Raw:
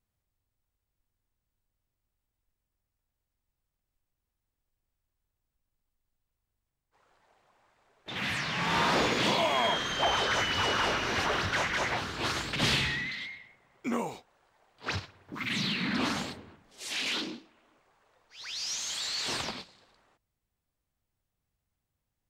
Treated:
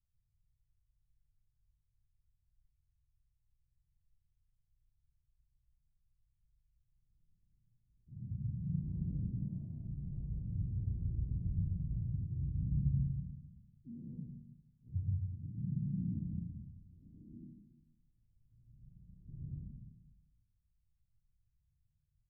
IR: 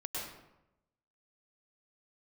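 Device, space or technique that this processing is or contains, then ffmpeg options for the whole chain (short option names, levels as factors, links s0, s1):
club heard from the street: -filter_complex "[0:a]alimiter=limit=0.0891:level=0:latency=1,lowpass=f=150:w=0.5412,lowpass=f=150:w=1.3066[s0];[1:a]atrim=start_sample=2205[s1];[s0][s1]afir=irnorm=-1:irlink=0,equalizer=f=560:t=o:w=2.1:g=-5.5,asplit=2[s2][s3];[s3]adelay=34,volume=0.562[s4];[s2][s4]amix=inputs=2:normalize=0,volume=1.68"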